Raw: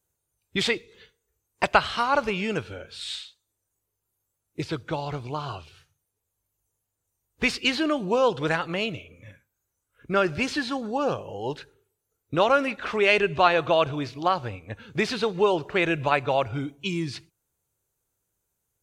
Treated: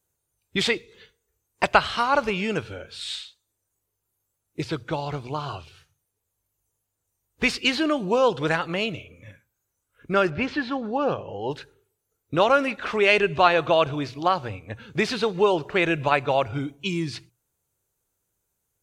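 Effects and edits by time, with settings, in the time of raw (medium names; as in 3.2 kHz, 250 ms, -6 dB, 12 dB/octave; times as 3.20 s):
10.29–11.50 s: low-pass 2.5 kHz -> 4.1 kHz
whole clip: hum notches 60/120 Hz; trim +1.5 dB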